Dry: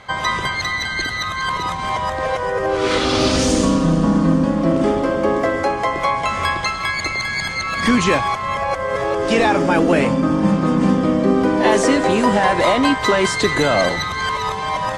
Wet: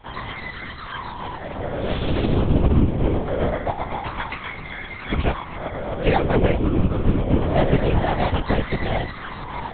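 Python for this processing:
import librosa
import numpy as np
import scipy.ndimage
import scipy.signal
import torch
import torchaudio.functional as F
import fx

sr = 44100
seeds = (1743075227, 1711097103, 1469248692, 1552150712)

p1 = fx.dynamic_eq(x, sr, hz=1200.0, q=2.0, threshold_db=-33.0, ratio=4.0, max_db=-4)
p2 = fx.stretch_vocoder_free(p1, sr, factor=0.65)
p3 = fx.sample_hold(p2, sr, seeds[0], rate_hz=2700.0, jitter_pct=0)
p4 = p2 + (p3 * librosa.db_to_amplitude(-9.0))
p5 = fx.lpc_vocoder(p4, sr, seeds[1], excitation='whisper', order=8)
y = fx.upward_expand(p5, sr, threshold_db=-24.0, expansion=1.5)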